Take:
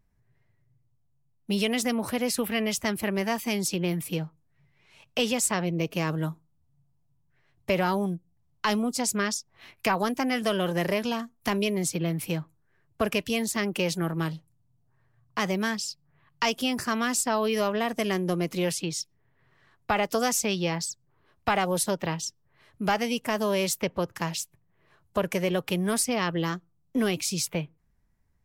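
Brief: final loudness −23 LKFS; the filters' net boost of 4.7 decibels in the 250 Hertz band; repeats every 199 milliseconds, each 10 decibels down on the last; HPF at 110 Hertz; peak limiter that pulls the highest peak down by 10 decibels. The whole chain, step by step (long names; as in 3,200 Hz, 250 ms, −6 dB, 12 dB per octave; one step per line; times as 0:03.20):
high-pass filter 110 Hz
parametric band 250 Hz +6.5 dB
brickwall limiter −20.5 dBFS
repeating echo 199 ms, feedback 32%, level −10 dB
level +6.5 dB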